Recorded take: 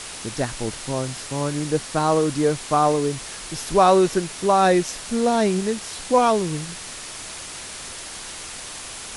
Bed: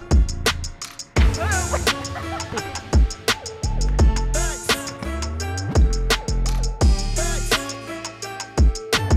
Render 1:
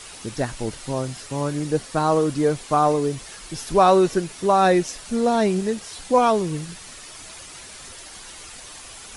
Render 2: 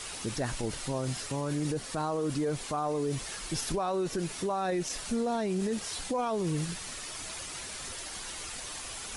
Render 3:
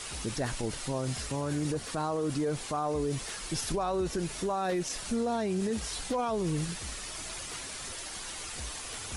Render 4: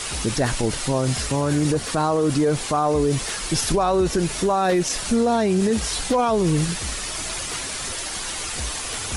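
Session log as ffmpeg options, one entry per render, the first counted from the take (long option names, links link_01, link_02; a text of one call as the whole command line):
ffmpeg -i in.wav -af "afftdn=noise_reduction=8:noise_floor=-36" out.wav
ffmpeg -i in.wav -af "acompressor=threshold=-22dB:ratio=4,alimiter=limit=-23dB:level=0:latency=1:release=19" out.wav
ffmpeg -i in.wav -i bed.wav -filter_complex "[1:a]volume=-28.5dB[link_01];[0:a][link_01]amix=inputs=2:normalize=0" out.wav
ffmpeg -i in.wav -af "volume=11dB" out.wav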